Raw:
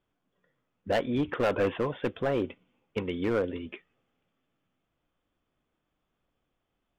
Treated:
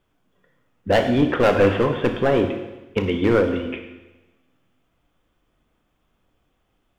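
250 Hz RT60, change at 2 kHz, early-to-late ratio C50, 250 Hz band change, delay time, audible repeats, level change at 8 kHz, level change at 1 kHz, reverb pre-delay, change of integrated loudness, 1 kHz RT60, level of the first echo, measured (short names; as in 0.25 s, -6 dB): 1.0 s, +10.0 dB, 7.5 dB, +10.5 dB, none, none, n/a, +10.5 dB, 19 ms, +10.0 dB, 1.1 s, none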